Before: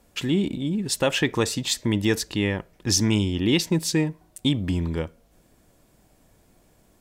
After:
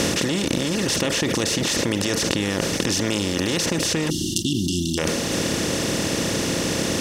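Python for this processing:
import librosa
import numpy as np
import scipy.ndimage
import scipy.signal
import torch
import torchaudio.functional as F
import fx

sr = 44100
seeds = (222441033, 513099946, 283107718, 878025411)

p1 = fx.bin_compress(x, sr, power=0.2)
p2 = fx.brickwall_bandstop(p1, sr, low_hz=390.0, high_hz=2700.0, at=(4.1, 4.98))
p3 = fx.over_compress(p2, sr, threshold_db=-19.0, ratio=-0.5)
p4 = p2 + F.gain(torch.from_numpy(p3), 0.0).numpy()
p5 = fx.quant_float(p4, sr, bits=6, at=(2.88, 3.6))
p6 = p5 + fx.echo_feedback(p5, sr, ms=124, feedback_pct=53, wet_db=-20.5, dry=0)
p7 = fx.dereverb_blind(p6, sr, rt60_s=0.85)
y = F.gain(torch.from_numpy(p7), -8.0).numpy()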